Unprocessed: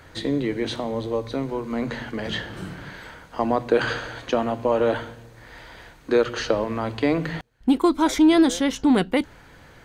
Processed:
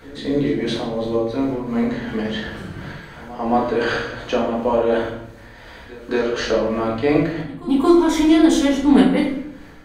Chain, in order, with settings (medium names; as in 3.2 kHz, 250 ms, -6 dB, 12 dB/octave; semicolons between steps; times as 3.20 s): tremolo 2.8 Hz, depth 48%; pre-echo 226 ms -18.5 dB; simulated room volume 170 m³, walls mixed, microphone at 1.6 m; trim -1 dB